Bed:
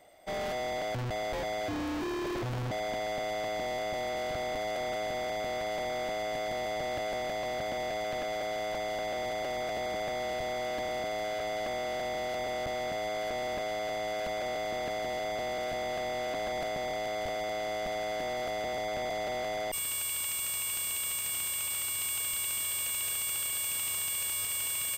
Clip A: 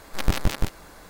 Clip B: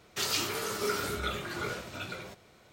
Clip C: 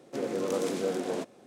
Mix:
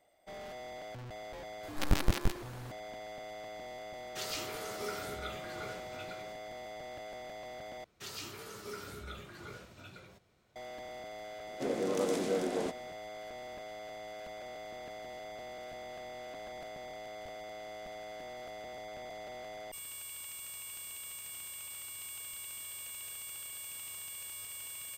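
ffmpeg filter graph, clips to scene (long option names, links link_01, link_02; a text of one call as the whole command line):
ffmpeg -i bed.wav -i cue0.wav -i cue1.wav -i cue2.wav -filter_complex "[2:a]asplit=2[link_01][link_02];[0:a]volume=-11.5dB[link_03];[link_01]acontrast=66[link_04];[link_02]lowshelf=frequency=180:gain=6.5[link_05];[link_03]asplit=2[link_06][link_07];[link_06]atrim=end=7.844[link_08];[link_05]atrim=end=2.72,asetpts=PTS-STARTPTS,volume=-13.5dB[link_09];[link_07]atrim=start=10.556[link_10];[1:a]atrim=end=1.09,asetpts=PTS-STARTPTS,volume=-6dB,afade=type=in:duration=0.004:curve=hsin,afade=type=out:start_time=1.086:duration=0.004:curve=hsin,adelay=1630[link_11];[link_04]atrim=end=2.72,asetpts=PTS-STARTPTS,volume=-15.5dB,afade=type=in:duration=0.004:curve=hsin,afade=type=out:start_time=2.716:duration=0.004:curve=hsin,adelay=3990[link_12];[3:a]atrim=end=1.46,asetpts=PTS-STARTPTS,volume=-2dB,afade=type=in:duration=0.004:curve=hsin,afade=type=out:start_time=1.456:duration=0.004:curve=hsin,adelay=11470[link_13];[link_08][link_09]acrossfade=duration=0.004:curve1=hsin:curve2=hsin[link_14];[link_14][link_10]acrossfade=duration=0.004:curve1=hsin:curve2=hsin[link_15];[link_15][link_11][link_12][link_13]amix=inputs=4:normalize=0" out.wav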